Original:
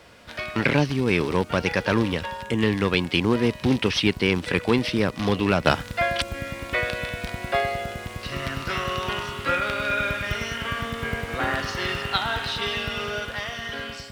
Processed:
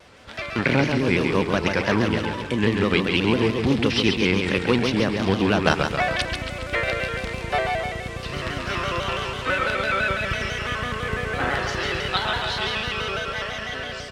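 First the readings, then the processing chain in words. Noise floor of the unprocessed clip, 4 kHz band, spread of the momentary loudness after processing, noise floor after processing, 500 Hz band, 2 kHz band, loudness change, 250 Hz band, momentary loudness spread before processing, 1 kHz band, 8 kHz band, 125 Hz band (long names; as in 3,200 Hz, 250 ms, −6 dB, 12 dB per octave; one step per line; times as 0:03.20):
−39 dBFS, +1.5 dB, 8 LU, −33 dBFS, +1.5 dB, +2.0 dB, +1.5 dB, +1.5 dB, 9 LU, +1.5 dB, +0.5 dB, +1.5 dB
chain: low-pass filter 9,400 Hz 12 dB per octave
repeating echo 137 ms, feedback 56%, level −5 dB
pitch modulation by a square or saw wave square 6 Hz, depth 100 cents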